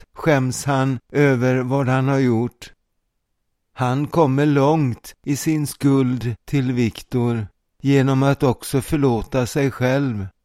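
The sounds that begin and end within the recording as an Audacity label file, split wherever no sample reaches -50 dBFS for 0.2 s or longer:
3.750000	7.500000	sound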